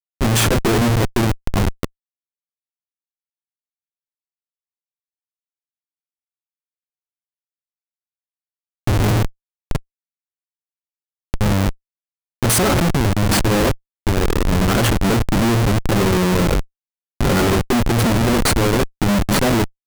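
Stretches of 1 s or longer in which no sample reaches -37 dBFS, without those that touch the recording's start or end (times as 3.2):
1.86–8.87
9.79–11.34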